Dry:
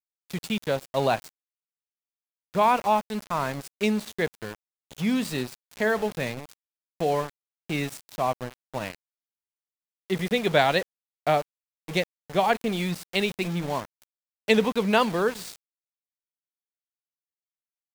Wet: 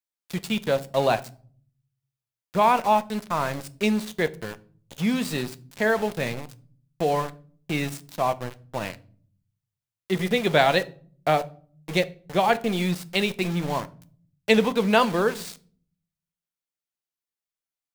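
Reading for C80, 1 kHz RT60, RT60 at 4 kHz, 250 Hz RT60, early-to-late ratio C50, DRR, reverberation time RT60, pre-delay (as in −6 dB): 25.5 dB, 0.40 s, 0.35 s, 0.95 s, 20.5 dB, 12.0 dB, 0.45 s, 6 ms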